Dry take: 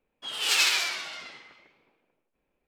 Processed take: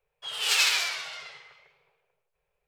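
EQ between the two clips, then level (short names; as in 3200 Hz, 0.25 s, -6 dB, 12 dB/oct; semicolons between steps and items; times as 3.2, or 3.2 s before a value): elliptic band-stop 160–410 Hz, stop band 40 dB; 0.0 dB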